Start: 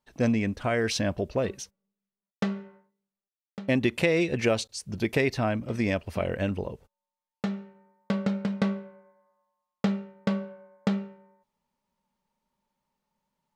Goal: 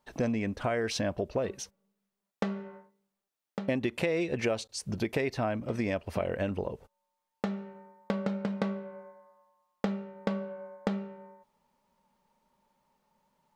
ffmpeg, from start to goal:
-af "equalizer=f=690:w=0.5:g=5.5,acompressor=threshold=0.0126:ratio=2.5,volume=1.68"

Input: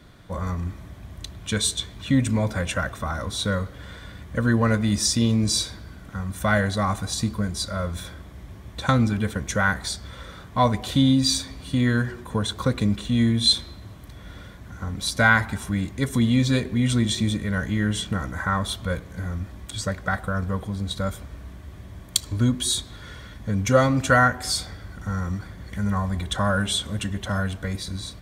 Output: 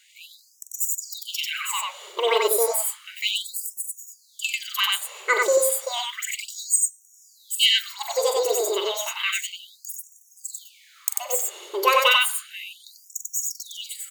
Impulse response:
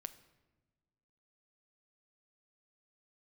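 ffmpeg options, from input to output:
-af "aecho=1:1:87.46|186.6:0.355|0.794,asetrate=88200,aresample=44100,afftfilt=real='re*gte(b*sr/1024,320*pow(5600/320,0.5+0.5*sin(2*PI*0.32*pts/sr)))':imag='im*gte(b*sr/1024,320*pow(5600/320,0.5+0.5*sin(2*PI*0.32*pts/sr)))':win_size=1024:overlap=0.75"

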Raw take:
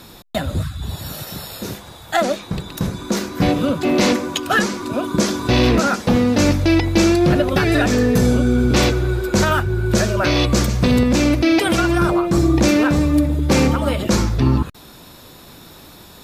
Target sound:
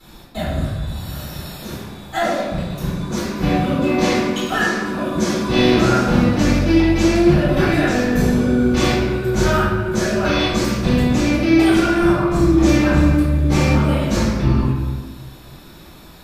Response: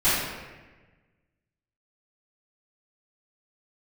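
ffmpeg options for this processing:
-filter_complex "[0:a]asettb=1/sr,asplit=3[s0][s1][s2];[s0]atrim=end=5.484[s3];[s1]atrim=start=5.48:end=6.22,asetpts=PTS-STARTPTS,afade=t=in:d=0.004:c=qsin,afade=t=out:st=0.736:d=0.004:c=qsin,asplit=2[s4][s5];[s5]adelay=40,volume=0.708[s6];[s4][s6]amix=inputs=2:normalize=0,atrim=end_sample=32634[s7];[s2]atrim=start=6.216[s8];[s3][s7]acrossfade=d=0.004:c1=hsin:c2=qsin[s9];[s9][s8]acrossfade=d=0.004:c1=qsin:c2=hsin[s10];[1:a]atrim=start_sample=2205[s11];[s10][s11]afir=irnorm=-1:irlink=0,volume=0.133"

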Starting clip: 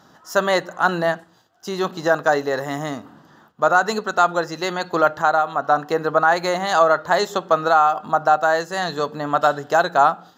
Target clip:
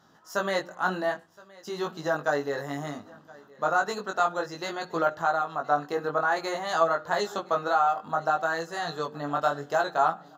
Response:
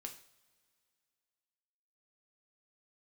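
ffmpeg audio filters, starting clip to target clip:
-filter_complex "[0:a]flanger=delay=18:depth=3.3:speed=0.58,asplit=2[s0][s1];[s1]aecho=0:1:1019|2038|3057:0.0668|0.0327|0.016[s2];[s0][s2]amix=inputs=2:normalize=0,volume=0.531"

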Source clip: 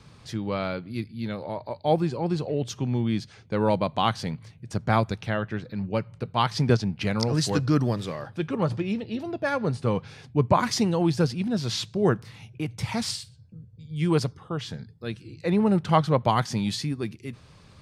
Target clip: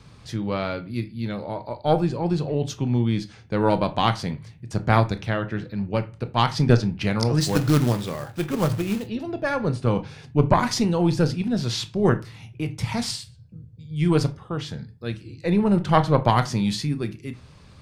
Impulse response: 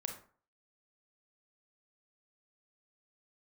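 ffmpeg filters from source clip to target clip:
-filter_complex "[0:a]aeval=exprs='0.501*(cos(1*acos(clip(val(0)/0.501,-1,1)))-cos(1*PI/2))+0.126*(cos(2*acos(clip(val(0)/0.501,-1,1)))-cos(2*PI/2))':c=same,asplit=3[s0][s1][s2];[s0]afade=t=out:st=7.4:d=0.02[s3];[s1]acrusher=bits=3:mode=log:mix=0:aa=0.000001,afade=t=in:st=7.4:d=0.02,afade=t=out:st=9.06:d=0.02[s4];[s2]afade=t=in:st=9.06:d=0.02[s5];[s3][s4][s5]amix=inputs=3:normalize=0,asplit=2[s6][s7];[1:a]atrim=start_sample=2205,asetrate=70560,aresample=44100,lowshelf=f=120:g=8.5[s8];[s7][s8]afir=irnorm=-1:irlink=0,volume=1.5[s9];[s6][s9]amix=inputs=2:normalize=0,volume=0.668"

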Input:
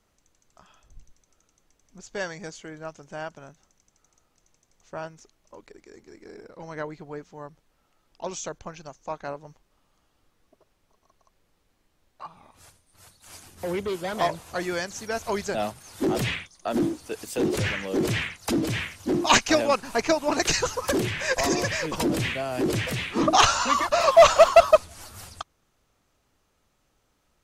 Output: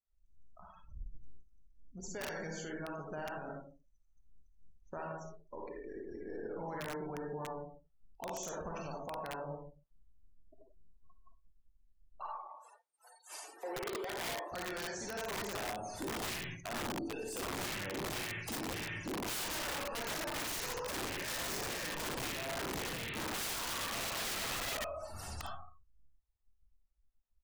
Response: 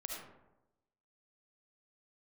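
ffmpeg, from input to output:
-filter_complex "[0:a]asettb=1/sr,asplit=3[s0][s1][s2];[s0]atrim=end=12.254[s3];[s1]atrim=start=12.25:end=14.52,asetpts=PTS-STARTPTS,afade=t=in:d=0.004:c=qsin,afade=t=out:st=2.266:d=0.004:c=qsin,highpass=f=330:w=0.5412,highpass=f=330:w=1.3066[s4];[s2]atrim=start=14.516[s5];[s3][s4]acrossfade=d=0.004:c1=hsin:c2=qsin[s6];[s6][s5]acrossfade=d=0.004:c1=qsin:c2=hsin,acompressor=threshold=0.00891:ratio=2,aecho=1:1:26|55:0.168|0.299[s7];[1:a]atrim=start_sample=2205,asetrate=61740,aresample=44100[s8];[s7][s8]afir=irnorm=-1:irlink=0,afftdn=nr=35:nf=-55,aeval=exprs='(mod(53.1*val(0)+1,2)-1)/53.1':c=same,alimiter=level_in=6.68:limit=0.0631:level=0:latency=1:release=25,volume=0.15,volume=2.24"

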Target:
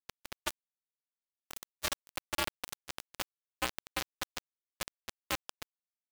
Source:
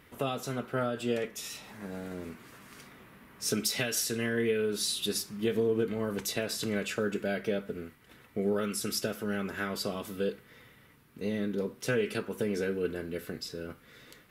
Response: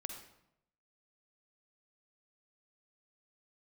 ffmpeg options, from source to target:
-af "tremolo=f=1.6:d=0.53,flanger=delay=5.1:depth=1.3:regen=-38:speed=0.23:shape=triangular,asetrate=103194,aresample=44100,afreqshift=68,alimiter=level_in=1.58:limit=0.0631:level=0:latency=1:release=150,volume=0.631,asuperstop=centerf=4700:order=12:qfactor=3.4,acrusher=bits=4:mix=0:aa=0.000001,agate=range=0.0224:threshold=0.00355:ratio=3:detection=peak,volume=2"

